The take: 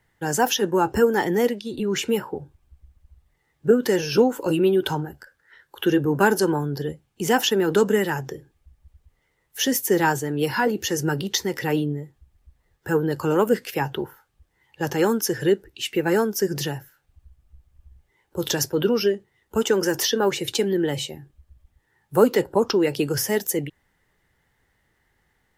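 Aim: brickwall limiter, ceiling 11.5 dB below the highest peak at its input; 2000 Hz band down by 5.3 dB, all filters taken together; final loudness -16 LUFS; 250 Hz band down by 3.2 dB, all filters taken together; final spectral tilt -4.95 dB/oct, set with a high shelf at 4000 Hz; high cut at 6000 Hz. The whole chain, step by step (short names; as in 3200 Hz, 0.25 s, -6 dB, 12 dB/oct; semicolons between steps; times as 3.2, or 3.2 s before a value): LPF 6000 Hz; bell 250 Hz -4.5 dB; bell 2000 Hz -5.5 dB; high shelf 4000 Hz -8 dB; gain +13 dB; limiter -5.5 dBFS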